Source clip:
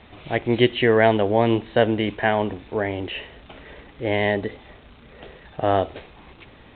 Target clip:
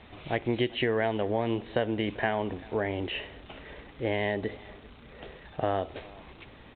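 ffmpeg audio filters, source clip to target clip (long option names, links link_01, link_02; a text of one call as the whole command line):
ffmpeg -i in.wav -af "acompressor=threshold=-21dB:ratio=5,aecho=1:1:391:0.075,volume=-3dB" out.wav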